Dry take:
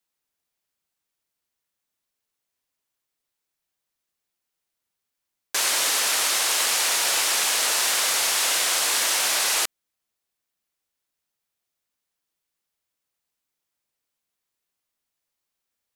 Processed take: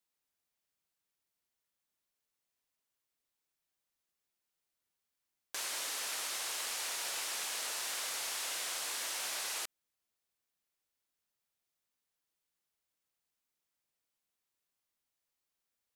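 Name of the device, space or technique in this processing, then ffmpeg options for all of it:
de-esser from a sidechain: -filter_complex "[0:a]asplit=2[a][b];[b]highpass=4.7k,apad=whole_len=703459[c];[a][c]sidechaincompress=threshold=-34dB:ratio=4:attack=1.2:release=47,volume=-5dB"

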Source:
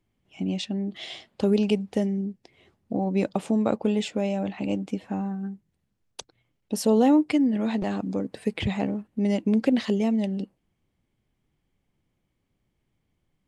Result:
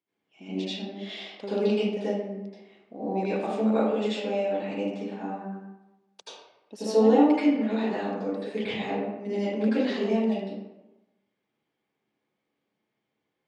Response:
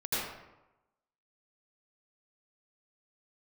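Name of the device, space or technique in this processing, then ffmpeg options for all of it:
supermarket ceiling speaker: -filter_complex "[0:a]highpass=320,lowpass=5.8k[a];[1:a]atrim=start_sample=2205[b];[a][b]afir=irnorm=-1:irlink=0,volume=-6.5dB"

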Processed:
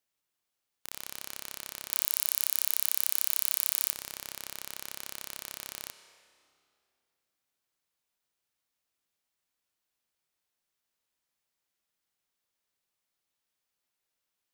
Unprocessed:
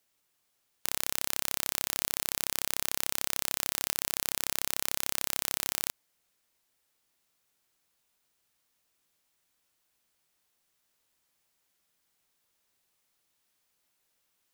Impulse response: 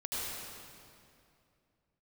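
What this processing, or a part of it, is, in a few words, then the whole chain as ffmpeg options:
filtered reverb send: -filter_complex "[0:a]asettb=1/sr,asplit=3[a][b][c];[a]atrim=end=1.904[d];[b]atrim=start=1.9:end=3.91,asetpts=PTS-STARTPTS,afade=t=in:d=0.004:c=qsin,afade=t=out:st=2.006:d=0.004:c=qsin,aemphasis=mode=production:type=50kf[e];[c]atrim=start=3.906[f];[d][e]acrossfade=d=0.004:c1=hsin:c2=qsin[g];[g][f]acrossfade=d=0.004:c1=qsin:c2=hsin,asplit=2[h][i];[i]highpass=f=540:p=1,lowpass=7.2k[j];[1:a]atrim=start_sample=2205[k];[j][k]afir=irnorm=-1:irlink=0,volume=-12dB[l];[h][l]amix=inputs=2:normalize=0,volume=-9.5dB"

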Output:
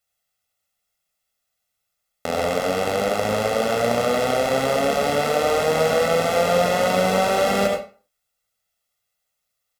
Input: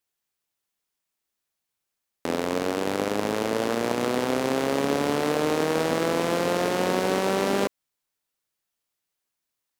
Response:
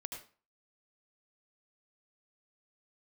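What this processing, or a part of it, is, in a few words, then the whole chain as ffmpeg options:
microphone above a desk: -filter_complex "[0:a]equalizer=f=150:t=o:w=0.23:g=-6,aecho=1:1:1.5:0.89[a];[1:a]atrim=start_sample=2205[b];[a][b]afir=irnorm=-1:irlink=0,volume=5dB"

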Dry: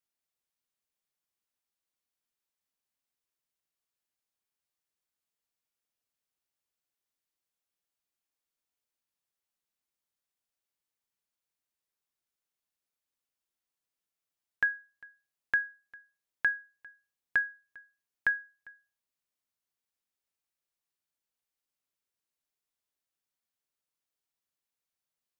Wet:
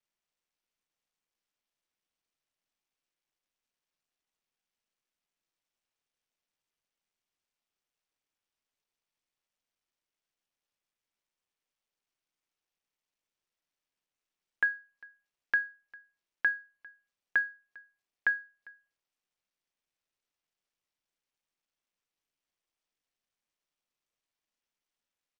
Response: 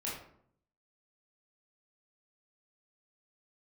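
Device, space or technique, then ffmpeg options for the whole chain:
Bluetooth headset: -af "highpass=200,aresample=16000,aresample=44100" -ar 48000 -c:a sbc -b:a 64k

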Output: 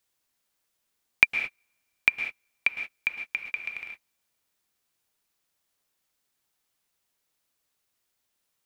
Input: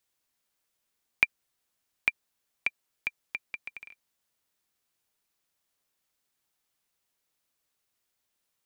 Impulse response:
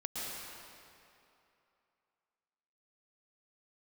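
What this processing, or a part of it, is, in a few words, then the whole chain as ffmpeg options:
keyed gated reverb: -filter_complex "[0:a]asplit=3[a][b][c];[1:a]atrim=start_sample=2205[d];[b][d]afir=irnorm=-1:irlink=0[e];[c]apad=whole_len=381584[f];[e][f]sidechaingate=range=-42dB:threshold=-51dB:ratio=16:detection=peak,volume=-3dB[g];[a][g]amix=inputs=2:normalize=0,volume=2dB"

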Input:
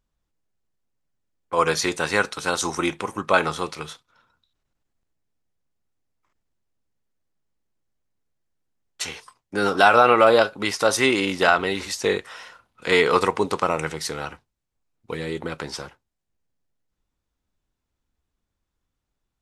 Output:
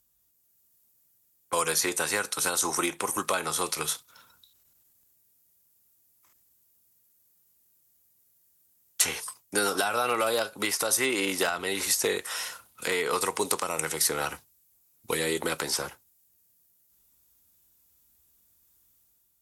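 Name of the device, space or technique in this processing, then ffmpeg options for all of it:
FM broadcast chain: -filter_complex "[0:a]highpass=52,dynaudnorm=f=100:g=9:m=5dB,acrossover=split=280|2300[a][b][c];[a]acompressor=threshold=-41dB:ratio=4[d];[b]acompressor=threshold=-23dB:ratio=4[e];[c]acompressor=threshold=-39dB:ratio=4[f];[d][e][f]amix=inputs=3:normalize=0,aemphasis=mode=production:type=50fm,alimiter=limit=-13.5dB:level=0:latency=1:release=316,asoftclip=type=hard:threshold=-16dB,lowpass=f=15k:w=0.5412,lowpass=f=15k:w=1.3066,aemphasis=mode=production:type=50fm,volume=-1.5dB"

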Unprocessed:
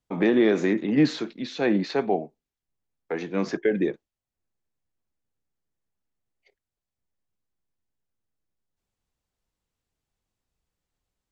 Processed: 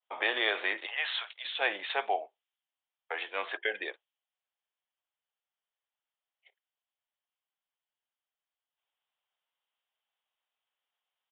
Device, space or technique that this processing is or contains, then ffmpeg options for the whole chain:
musical greeting card: -filter_complex "[0:a]asettb=1/sr,asplit=3[a][b][c];[a]atrim=end=0.864[d];[b]atrim=start=0.86:end=1.45,asetpts=PTS-STARTPTS,afade=t=in:d=0.004:c=qsin,afade=t=out:st=0.586:d=0.004:c=qsin,highpass=f=670:w=0.5412,highpass=f=670:w=1.3066[e];[c]atrim=start=1.446[f];[d][e]acrossfade=d=0.004:c1=hsin:c2=qsin[g];[g][f]acrossfade=d=0.004:c1=qsin:c2=hsin,aresample=8000,aresample=44100,highpass=f=660:w=0.5412,highpass=f=660:w=1.3066,equalizer=f=3.1k:t=o:w=0.31:g=8,adynamicequalizer=threshold=0.01:dfrequency=1900:dqfactor=0.7:tfrequency=1900:tqfactor=0.7:attack=5:release=100:ratio=0.375:range=2:mode=boostabove:tftype=highshelf"

